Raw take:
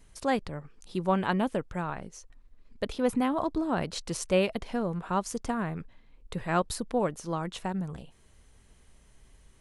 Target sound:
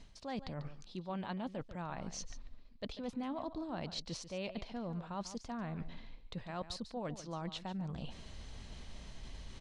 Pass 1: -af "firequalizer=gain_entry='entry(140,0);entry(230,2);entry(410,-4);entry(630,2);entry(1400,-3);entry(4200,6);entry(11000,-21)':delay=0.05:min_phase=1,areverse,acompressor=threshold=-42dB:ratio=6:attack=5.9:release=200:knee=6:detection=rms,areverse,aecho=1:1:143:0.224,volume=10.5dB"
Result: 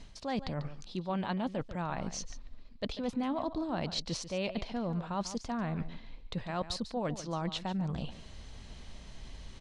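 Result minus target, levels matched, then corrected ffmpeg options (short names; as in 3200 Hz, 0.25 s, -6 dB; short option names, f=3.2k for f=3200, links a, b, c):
compressor: peak gain reduction -6.5 dB
-af "firequalizer=gain_entry='entry(140,0);entry(230,2);entry(410,-4);entry(630,2);entry(1400,-3);entry(4200,6);entry(11000,-21)':delay=0.05:min_phase=1,areverse,acompressor=threshold=-50dB:ratio=6:attack=5.9:release=200:knee=6:detection=rms,areverse,aecho=1:1:143:0.224,volume=10.5dB"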